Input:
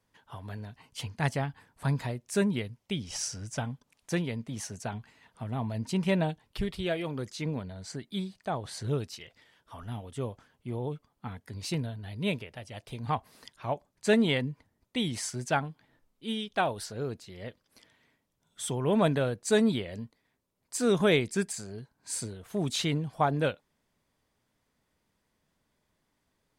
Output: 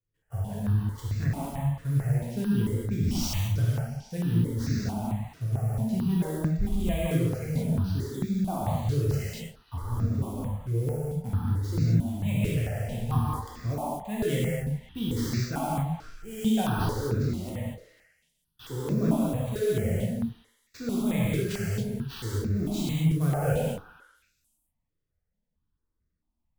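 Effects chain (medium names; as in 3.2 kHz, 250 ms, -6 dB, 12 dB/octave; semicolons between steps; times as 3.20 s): RIAA curve playback; gate -52 dBFS, range -25 dB; treble shelf 4.3 kHz +6 dB; reverse; compression 5:1, threshold -33 dBFS, peak gain reduction 18.5 dB; reverse; sample-rate reducer 11 kHz, jitter 20%; repeats whose band climbs or falls 135 ms, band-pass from 650 Hz, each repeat 0.7 oct, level -9 dB; gated-style reverb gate 270 ms flat, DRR -7 dB; stepped phaser 4.5 Hz 220–3100 Hz; trim +4 dB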